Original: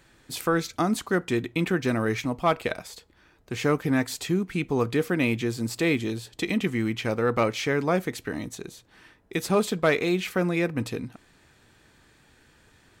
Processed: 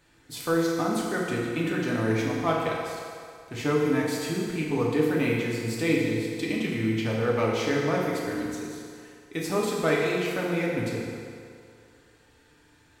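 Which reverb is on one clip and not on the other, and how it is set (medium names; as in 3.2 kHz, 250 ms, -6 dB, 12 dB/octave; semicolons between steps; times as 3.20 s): FDN reverb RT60 2.3 s, low-frequency decay 0.75×, high-frequency decay 0.8×, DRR -4 dB; trim -6.5 dB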